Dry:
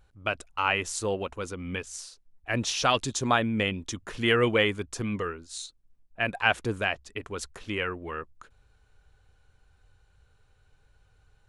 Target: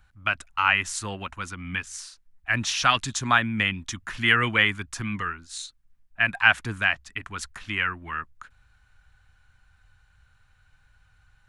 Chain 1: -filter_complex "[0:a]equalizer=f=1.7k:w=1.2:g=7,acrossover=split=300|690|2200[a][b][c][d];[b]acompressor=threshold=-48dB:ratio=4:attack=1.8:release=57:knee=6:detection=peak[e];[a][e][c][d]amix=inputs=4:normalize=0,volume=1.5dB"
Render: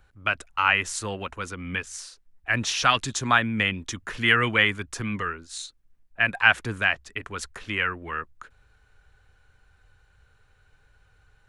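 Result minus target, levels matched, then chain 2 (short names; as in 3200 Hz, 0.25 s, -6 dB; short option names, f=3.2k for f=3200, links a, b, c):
500 Hz band +3.5 dB
-filter_complex "[0:a]equalizer=f=1.7k:w=1.2:g=7,acrossover=split=300|690|2200[a][b][c][d];[b]acompressor=threshold=-48dB:ratio=4:attack=1.8:release=57:knee=6:detection=peak,highpass=f=460:w=0.5412,highpass=f=460:w=1.3066[e];[a][e][c][d]amix=inputs=4:normalize=0,volume=1.5dB"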